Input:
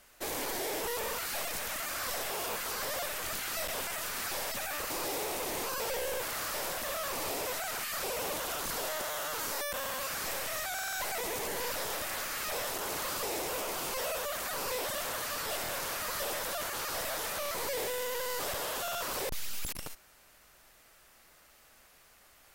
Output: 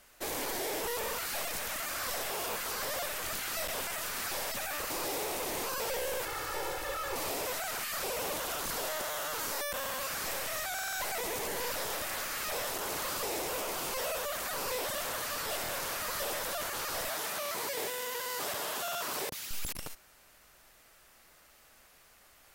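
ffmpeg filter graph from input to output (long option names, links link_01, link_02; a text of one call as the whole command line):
ffmpeg -i in.wav -filter_complex "[0:a]asettb=1/sr,asplit=3[link_01][link_02][link_03];[link_01]atrim=end=6.254[link_04];[link_02]atrim=start=6.25:end=7.16,asetpts=PTS-STARTPTS,afade=type=in:duration=0.004:curve=qsin,afade=type=out:start_time=0.906:duration=0.004:curve=qsin,highshelf=frequency=2600:gain=-8.5,aecho=1:1:2.3:0.94,atrim=end_sample=40131[link_05];[link_03]atrim=start=7.156[link_06];[link_04][link_05]acrossfade=duration=0.004:curve1=hsin:curve2=qsin[link_07];[link_07][link_06]acrossfade=duration=0.004:curve1=qsin:curve2=hsin,asettb=1/sr,asplit=3[link_08][link_09][link_10];[link_08]atrim=end=17.084[link_11];[link_09]atrim=start=17.08:end=19.51,asetpts=PTS-STARTPTS,afade=type=in:duration=0.004:curve=qsin,afade=type=out:start_time=2.426:duration=0.004:curve=qsin,highpass=130,bandreject=frequency=520:width=7.7[link_12];[link_10]atrim=start=19.506[link_13];[link_11][link_12]acrossfade=duration=0.004:curve1=hsin:curve2=qsin[link_14];[link_14][link_13]acrossfade=duration=0.004:curve1=qsin:curve2=hsin" out.wav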